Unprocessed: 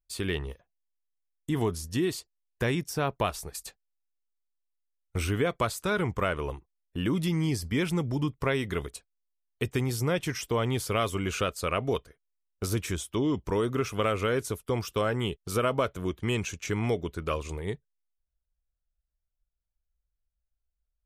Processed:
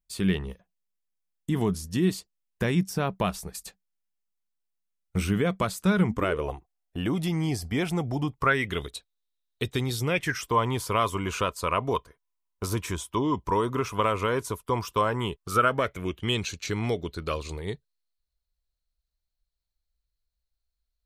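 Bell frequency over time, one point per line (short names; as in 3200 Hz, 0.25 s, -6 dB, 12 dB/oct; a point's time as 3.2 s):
bell +15 dB 0.29 oct
6.07 s 190 Hz
6.5 s 730 Hz
8.29 s 730 Hz
8.81 s 3800 Hz
9.97 s 3800 Hz
10.5 s 1000 Hz
15.36 s 1000 Hz
16.48 s 4200 Hz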